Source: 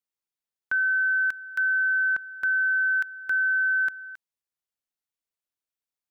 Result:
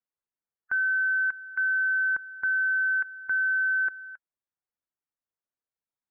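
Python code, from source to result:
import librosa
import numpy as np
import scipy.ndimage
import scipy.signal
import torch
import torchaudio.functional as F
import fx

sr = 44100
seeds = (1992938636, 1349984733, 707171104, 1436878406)

y = fx.spec_quant(x, sr, step_db=15)
y = np.repeat(scipy.signal.resample_poly(y, 1, 4), 4)[:len(y)]
y = scipy.signal.sosfilt(scipy.signal.butter(4, 1800.0, 'lowpass', fs=sr, output='sos'), y)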